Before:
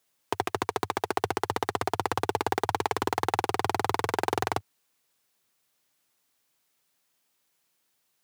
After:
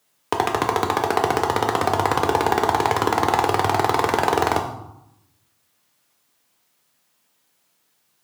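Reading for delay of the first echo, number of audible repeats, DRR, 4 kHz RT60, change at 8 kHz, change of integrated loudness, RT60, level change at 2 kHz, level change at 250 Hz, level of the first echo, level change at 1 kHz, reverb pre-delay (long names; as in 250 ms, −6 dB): no echo audible, no echo audible, 2.5 dB, 0.60 s, +7.0 dB, +9.0 dB, 0.85 s, +8.0 dB, +9.0 dB, no echo audible, +9.0 dB, 4 ms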